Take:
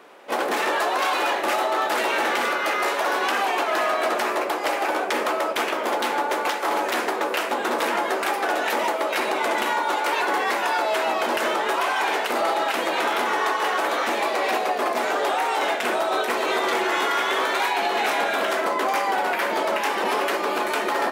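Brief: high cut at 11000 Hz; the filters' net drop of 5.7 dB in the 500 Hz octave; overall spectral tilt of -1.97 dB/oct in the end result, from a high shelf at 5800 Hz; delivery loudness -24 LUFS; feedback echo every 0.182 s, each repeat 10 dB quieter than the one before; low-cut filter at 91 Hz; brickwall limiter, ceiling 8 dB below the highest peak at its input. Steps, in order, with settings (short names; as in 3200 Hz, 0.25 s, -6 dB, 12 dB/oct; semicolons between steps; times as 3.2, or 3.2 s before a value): HPF 91 Hz; LPF 11000 Hz; bell 500 Hz -8 dB; high shelf 5800 Hz +8.5 dB; limiter -18 dBFS; feedback echo 0.182 s, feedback 32%, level -10 dB; gain +2 dB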